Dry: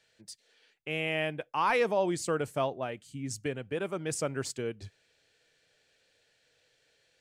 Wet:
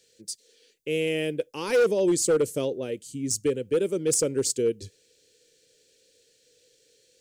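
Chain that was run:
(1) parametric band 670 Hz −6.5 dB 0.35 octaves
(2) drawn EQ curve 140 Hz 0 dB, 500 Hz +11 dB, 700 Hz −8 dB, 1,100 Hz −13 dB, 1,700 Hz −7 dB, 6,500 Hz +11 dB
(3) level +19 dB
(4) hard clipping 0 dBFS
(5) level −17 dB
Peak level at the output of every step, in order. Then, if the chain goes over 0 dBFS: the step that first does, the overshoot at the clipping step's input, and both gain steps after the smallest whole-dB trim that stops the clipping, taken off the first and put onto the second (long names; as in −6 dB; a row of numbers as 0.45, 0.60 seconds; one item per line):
−18.0, −10.0, +9.0, 0.0, −17.0 dBFS
step 3, 9.0 dB
step 3 +10 dB, step 5 −8 dB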